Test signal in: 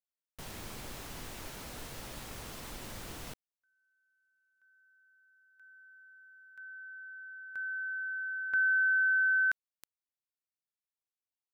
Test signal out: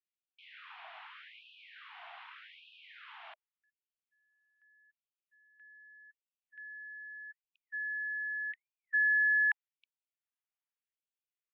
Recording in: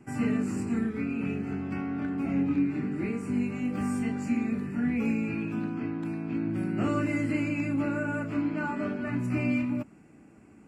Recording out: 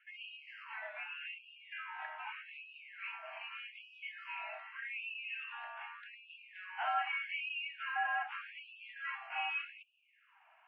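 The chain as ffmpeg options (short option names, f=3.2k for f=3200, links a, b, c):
-af "highpass=f=230:t=q:w=0.5412,highpass=f=230:t=q:w=1.307,lowpass=f=3k:t=q:w=0.5176,lowpass=f=3k:t=q:w=0.7071,lowpass=f=3k:t=q:w=1.932,afreqshift=180,afftfilt=real='re*gte(b*sr/1024,610*pow(2500/610,0.5+0.5*sin(2*PI*0.83*pts/sr)))':imag='im*gte(b*sr/1024,610*pow(2500/610,0.5+0.5*sin(2*PI*0.83*pts/sr)))':win_size=1024:overlap=0.75"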